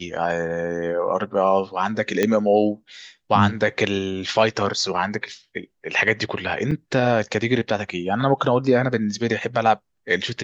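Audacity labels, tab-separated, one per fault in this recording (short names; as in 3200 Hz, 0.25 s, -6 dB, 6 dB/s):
2.230000	2.230000	pop -6 dBFS
6.710000	6.710000	gap 4.8 ms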